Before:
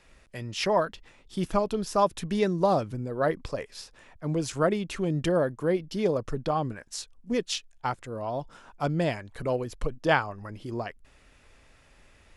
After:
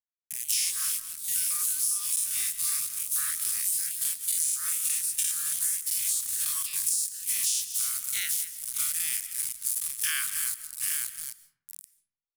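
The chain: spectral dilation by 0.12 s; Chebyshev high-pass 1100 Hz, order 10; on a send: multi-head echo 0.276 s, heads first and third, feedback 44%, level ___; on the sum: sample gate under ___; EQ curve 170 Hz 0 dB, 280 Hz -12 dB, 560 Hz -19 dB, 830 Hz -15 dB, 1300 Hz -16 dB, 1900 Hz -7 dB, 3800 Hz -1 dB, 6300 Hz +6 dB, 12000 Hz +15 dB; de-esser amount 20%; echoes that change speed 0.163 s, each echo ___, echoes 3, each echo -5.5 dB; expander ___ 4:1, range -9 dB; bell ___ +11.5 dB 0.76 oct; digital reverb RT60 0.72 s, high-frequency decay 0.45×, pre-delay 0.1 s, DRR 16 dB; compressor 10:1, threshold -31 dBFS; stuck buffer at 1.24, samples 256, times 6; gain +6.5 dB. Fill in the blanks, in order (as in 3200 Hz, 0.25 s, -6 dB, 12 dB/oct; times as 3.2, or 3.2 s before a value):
-12.5 dB, -35 dBFS, +4 st, -32 dBFS, 9700 Hz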